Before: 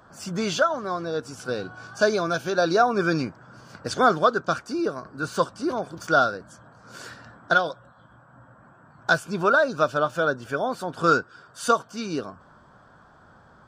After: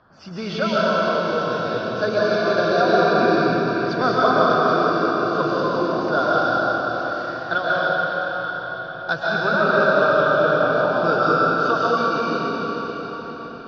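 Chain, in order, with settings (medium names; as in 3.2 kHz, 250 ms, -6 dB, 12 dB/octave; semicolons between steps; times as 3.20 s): steep low-pass 5.2 kHz 48 dB/octave; reverberation RT60 5.3 s, pre-delay 90 ms, DRR -8.5 dB; trim -3.5 dB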